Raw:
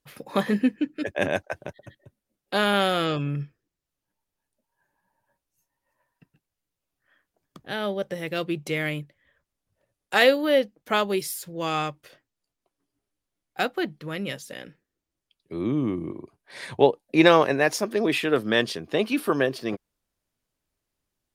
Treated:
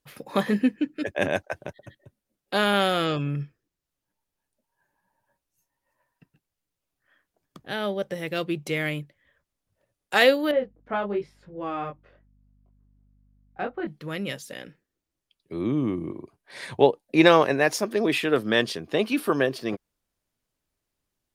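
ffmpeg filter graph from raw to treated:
-filter_complex "[0:a]asettb=1/sr,asplit=3[a][b][c];[a]atrim=end=10.514[d];[b]atrim=start=10.51:end=13.87,asetpts=PTS-STARTPTS,afade=t=in:d=0.004:c=qsin,afade=t=out:st=3.356:d=0.004:c=qsin,lowpass=1.5k,flanger=delay=20:depth=5.1:speed=1,aeval=exprs='val(0)+0.001*(sin(2*PI*50*n/s)+sin(2*PI*2*50*n/s)/2+sin(2*PI*3*50*n/s)/3+sin(2*PI*4*50*n/s)/4+sin(2*PI*5*50*n/s)/5)':c=same[e];[c]atrim=start=13.866[f];[d][e]acrossfade=d=0.004:c1=hsin:c2=qsin[g];[g][f]acrossfade=d=0.004:c1=qsin:c2=hsin"

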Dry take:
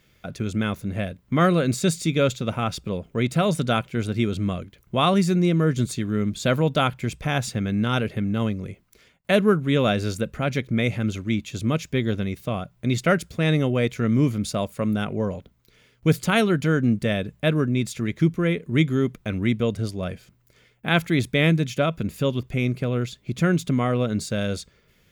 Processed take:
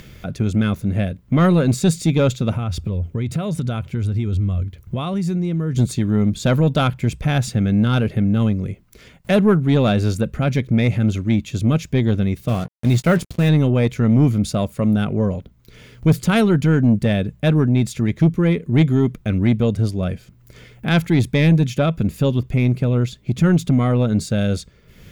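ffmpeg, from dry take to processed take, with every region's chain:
-filter_complex "[0:a]asettb=1/sr,asplit=3[a][b][c];[a]atrim=end=2.544[d];[b]atrim=start=2.54:end=5.75,asetpts=PTS-STARTPTS,afade=t=in:d=0.004:c=qsin,afade=t=out:st=3.206:d=0.004:c=qsin,equalizer=f=86:t=o:w=0.58:g=14.5,acompressor=threshold=-27dB:ratio=4:attack=3.2:release=140:knee=1:detection=peak[e];[c]atrim=start=5.746[f];[d][e]acrossfade=d=0.004:c1=hsin:c2=qsin[g];[g][f]acrossfade=d=0.004:c1=qsin:c2=hsin,asettb=1/sr,asplit=3[h][i][j];[h]atrim=end=12.484[k];[i]atrim=start=12.48:end=13.49,asetpts=PTS-STARTPTS,afade=t=in:d=0.004:c=qsin,afade=t=out:st=1.006:d=0.004:c=qsin,acrusher=bits=5:mix=0:aa=0.5,asplit=2[l][m];[m]adelay=17,volume=-13dB[n];[l][n]amix=inputs=2:normalize=0,atrim=end_sample=44541[o];[j]atrim=start=13.486[p];[k][o]acrossfade=d=0.004:c1=hsin:c2=qsin[q];[q][p]acrossfade=d=0.004:c1=qsin:c2=hsin,acompressor=mode=upward:threshold=-37dB:ratio=2.5,lowshelf=f=320:g=8.5,acontrast=78,volume=-5dB"

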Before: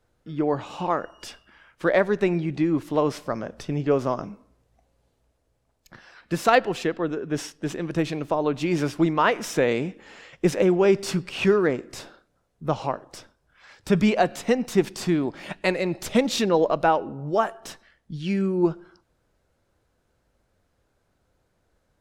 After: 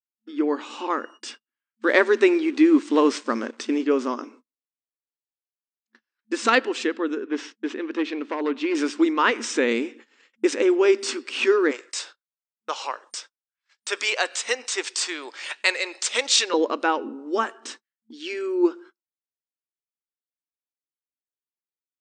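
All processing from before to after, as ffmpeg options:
-filter_complex "[0:a]asettb=1/sr,asplit=3[a][b][c];[a]atrim=end=1.894[d];[b]atrim=start=1.89:end=3.84,asetpts=PTS-STARTPTS,afade=t=in:d=0.004:c=qsin,afade=t=out:st=1.946:d=0.004:c=qsin,acontrast=25,aeval=exprs='sgn(val(0))*max(abs(val(0))-0.00473,0)':c=same[e];[c]atrim=start=3.836[f];[d][e]acrossfade=d=0.004:c1=hsin:c2=qsin[g];[g][f]acrossfade=d=0.004:c1=qsin:c2=hsin,asettb=1/sr,asplit=3[h][i][j];[h]atrim=end=7.244[k];[i]atrim=start=7.24:end=8.75,asetpts=PTS-STARTPTS,afade=t=in:d=0.004:c=qsin,afade=t=out:st=1.506:d=0.004:c=qsin,asoftclip=type=hard:threshold=-18.5dB,highpass=200,lowpass=3.4k[l];[j]atrim=start=8.746[m];[k][l]acrossfade=d=0.004:c1=hsin:c2=qsin[n];[n][m]acrossfade=d=0.004:c1=qsin:c2=hsin,asettb=1/sr,asplit=3[o][p][q];[o]atrim=end=11.714[r];[p]atrim=start=11.71:end=16.54,asetpts=PTS-STARTPTS,afade=t=in:d=0.004:c=qsin,afade=t=out:st=4.826:d=0.004:c=qsin,highpass=f=530:w=0.5412,highpass=f=530:w=1.3066,highshelf=f=3.2k:g=8.5[s];[q]atrim=start=16.536[t];[r][s]acrossfade=d=0.004:c1=hsin:c2=qsin[u];[u][t]acrossfade=d=0.004:c1=qsin:c2=hsin,agate=range=-41dB:threshold=-43dB:ratio=16:detection=peak,afftfilt=real='re*between(b*sr/4096,220,9000)':imag='im*between(b*sr/4096,220,9000)':win_size=4096:overlap=0.75,equalizer=f=670:w=2:g=-14,volume=4dB"

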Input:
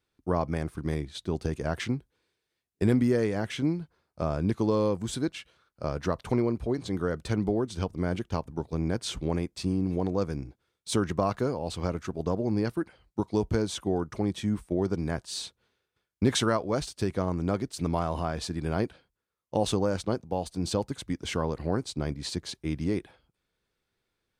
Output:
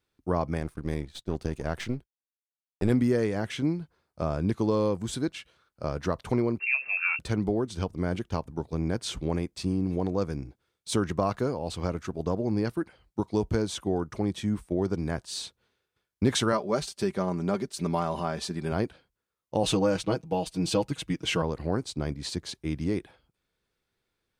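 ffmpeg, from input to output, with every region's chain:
-filter_complex "[0:a]asettb=1/sr,asplit=3[a][b][c];[a]atrim=end=0.604[d];[b]atrim=start=0.6:end=2.9,asetpts=PTS-STARTPTS,afade=t=in:d=0.004:c=qsin,afade=t=out:st=2.296:d=0.004:c=qsin,aeval=exprs='if(lt(val(0),0),0.447*val(0),val(0))':c=same,agate=range=-33dB:threshold=-46dB:ratio=3:release=100:detection=peak[e];[c]atrim=start=2.896[f];[d][e]acrossfade=d=0.004:c1=hsin:c2=qsin[g];[g][f]acrossfade=d=0.004:c1=qsin:c2=hsin,asettb=1/sr,asplit=3[h][i][j];[h]atrim=end=6.594[k];[i]atrim=start=6.59:end=7.19,asetpts=PTS-STARTPTS,afade=t=in:d=0.004:c=qsin,afade=t=out:st=0.596:d=0.004:c=qsin,asubboost=boost=8.5:cutoff=130,asplit=2[l][m];[m]adelay=15,volume=-3.5dB[n];[l][n]amix=inputs=2:normalize=0,atrim=end_sample=26460,lowpass=f=2.4k:t=q:w=0.5098,lowpass=f=2.4k:t=q:w=0.6013,lowpass=f=2.4k:t=q:w=0.9,lowpass=f=2.4k:t=q:w=2.563,afreqshift=-2800[o];[j]atrim=start=7.186[p];[k][o]acrossfade=d=0.004:c1=hsin:c2=qsin[q];[q][p]acrossfade=d=0.004:c1=qsin:c2=hsin,asettb=1/sr,asplit=3[r][s][t];[r]atrim=end=16.524[u];[s]atrim=start=16.52:end=18.72,asetpts=PTS-STARTPTS,afade=t=in:d=0.004:c=qsin,afade=t=out:st=2.196:d=0.004:c=qsin,highpass=f=140:p=1,aecho=1:1:5.1:0.61,atrim=end_sample=97020[v];[t]atrim=start=18.716[w];[u][v]acrossfade=d=0.004:c1=hsin:c2=qsin[x];[x][w]acrossfade=d=0.004:c1=qsin:c2=hsin,asettb=1/sr,asplit=3[y][z][aa];[y]atrim=end=19.634[ab];[z]atrim=start=19.63:end=21.42,asetpts=PTS-STARTPTS,afade=t=in:d=0.004:c=qsin,afade=t=out:st=1.786:d=0.004:c=qsin,equalizer=f=2.7k:w=2.7:g=7.5,aecho=1:1:6.3:0.8,atrim=end_sample=78939[ac];[aa]atrim=start=21.416[ad];[ab][ac]acrossfade=d=0.004:c1=hsin:c2=qsin[ae];[ae][ad]acrossfade=d=0.004:c1=qsin:c2=hsin"

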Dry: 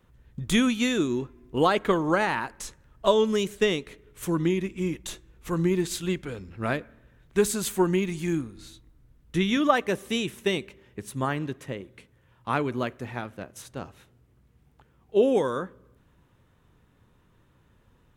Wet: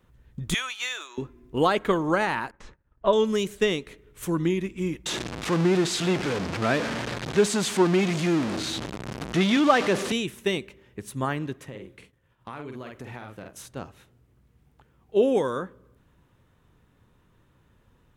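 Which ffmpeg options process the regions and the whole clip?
-filter_complex "[0:a]asettb=1/sr,asplit=3[a][b][c];[a]atrim=end=0.544[d];[b]atrim=start=0.54:end=1.18,asetpts=PTS-STARTPTS,afade=t=in:d=0.004:c=qsin,afade=t=out:st=0.636:d=0.004:c=qsin,highpass=f=770:w=0.5412,highpass=f=770:w=1.3066,adynamicsmooth=sensitivity=6:basefreq=7.6k[e];[c]atrim=start=1.176[f];[d][e]acrossfade=d=0.004:c1=hsin:c2=qsin[g];[g][f]acrossfade=d=0.004:c1=qsin:c2=hsin,asettb=1/sr,asplit=3[h][i][j];[h]atrim=end=2.514[k];[i]atrim=start=2.51:end=3.13,asetpts=PTS-STARTPTS,afade=t=in:d=0.004:c=qsin,afade=t=out:st=0.616:d=0.004:c=qsin,agate=range=-33dB:threshold=-48dB:ratio=3:release=100:detection=peak,lowpass=2.2k[l];[j]atrim=start=3.126[m];[k][l]acrossfade=d=0.004:c1=hsin:c2=qsin[n];[n][m]acrossfade=d=0.004:c1=qsin:c2=hsin,asettb=1/sr,asplit=3[o][p][q];[o]atrim=end=5.064[r];[p]atrim=start=5.06:end=10.12,asetpts=PTS-STARTPTS,afade=t=in:d=0.004:c=qsin,afade=t=out:st=5.056:d=0.004:c=qsin,aeval=exprs='val(0)+0.5*0.075*sgn(val(0))':c=same,highpass=140,lowpass=6.1k[s];[q]atrim=start=10.116[t];[r][s]acrossfade=d=0.004:c1=hsin:c2=qsin[u];[u][t]acrossfade=d=0.004:c1=qsin:c2=hsin,asettb=1/sr,asplit=3[v][w][x];[v]atrim=end=11.654[y];[w]atrim=start=11.65:end=13.66,asetpts=PTS-STARTPTS,afade=t=in:d=0.004:c=qsin,afade=t=out:st=2.006:d=0.004:c=qsin,asplit=2[z][aa];[aa]adelay=47,volume=-5.5dB[ab];[z][ab]amix=inputs=2:normalize=0,atrim=end_sample=88641,agate=range=-33dB:threshold=-56dB:ratio=3:release=100:detection=peak,acompressor=threshold=-34dB:ratio=6:attack=3.2:release=140:knee=1:detection=peak[ac];[x]atrim=start=13.656[ad];[y][ac]acrossfade=d=0.004:c1=hsin:c2=qsin[ae];[ae][ad]acrossfade=d=0.004:c1=qsin:c2=hsin"

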